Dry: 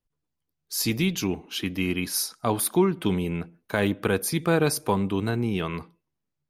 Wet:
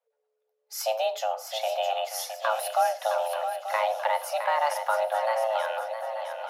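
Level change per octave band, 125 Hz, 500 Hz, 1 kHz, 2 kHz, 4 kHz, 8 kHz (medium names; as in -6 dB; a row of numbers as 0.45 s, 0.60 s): under -40 dB, +0.5 dB, +8.0 dB, -1.5 dB, -3.0 dB, -7.5 dB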